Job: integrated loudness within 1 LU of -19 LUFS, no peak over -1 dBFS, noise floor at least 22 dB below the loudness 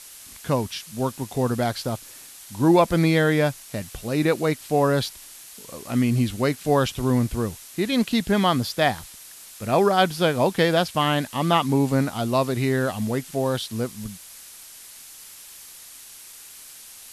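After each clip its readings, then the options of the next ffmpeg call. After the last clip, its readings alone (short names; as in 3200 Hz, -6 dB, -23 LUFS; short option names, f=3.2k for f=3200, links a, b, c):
noise floor -44 dBFS; noise floor target -45 dBFS; loudness -23.0 LUFS; peak -5.0 dBFS; loudness target -19.0 LUFS
-> -af "afftdn=nr=6:nf=-44"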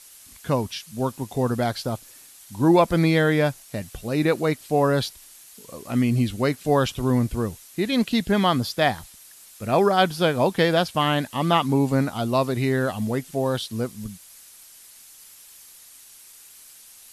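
noise floor -48 dBFS; loudness -22.5 LUFS; peak -5.0 dBFS; loudness target -19.0 LUFS
-> -af "volume=3.5dB"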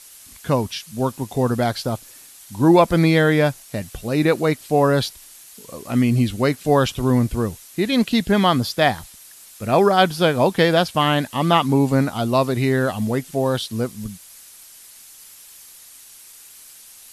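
loudness -19.0 LUFS; peak -1.5 dBFS; noise floor -45 dBFS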